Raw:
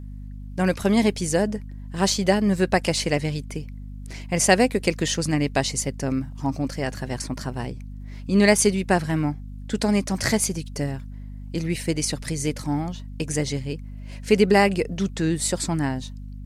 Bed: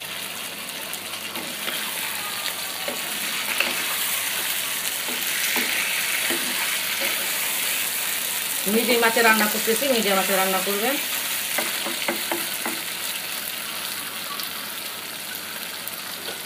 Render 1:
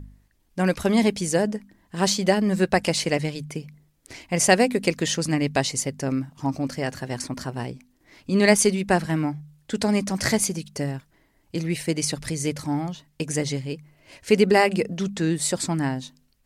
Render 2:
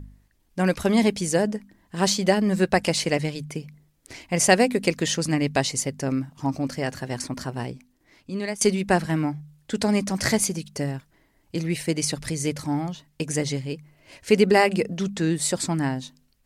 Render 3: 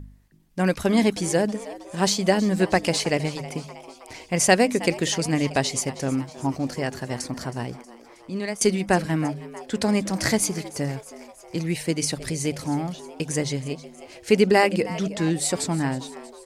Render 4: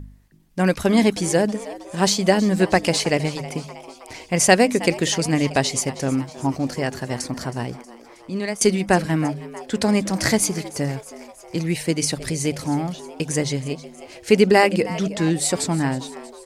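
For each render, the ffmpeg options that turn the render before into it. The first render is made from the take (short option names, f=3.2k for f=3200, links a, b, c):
-af "bandreject=f=50:t=h:w=4,bandreject=f=100:t=h:w=4,bandreject=f=150:t=h:w=4,bandreject=f=200:t=h:w=4,bandreject=f=250:t=h:w=4"
-filter_complex "[0:a]asplit=2[a][b];[a]atrim=end=8.61,asetpts=PTS-STARTPTS,afade=t=out:st=7.72:d=0.89:silence=0.105925[c];[b]atrim=start=8.61,asetpts=PTS-STARTPTS,afade=t=in:d=0.004:c=hsin:silence=0.105925[d];[c][d]concat=n=2:v=0:a=1"
-filter_complex "[0:a]asplit=6[a][b][c][d][e][f];[b]adelay=318,afreqshift=110,volume=-17dB[g];[c]adelay=636,afreqshift=220,volume=-21.7dB[h];[d]adelay=954,afreqshift=330,volume=-26.5dB[i];[e]adelay=1272,afreqshift=440,volume=-31.2dB[j];[f]adelay=1590,afreqshift=550,volume=-35.9dB[k];[a][g][h][i][j][k]amix=inputs=6:normalize=0"
-af "volume=3dB"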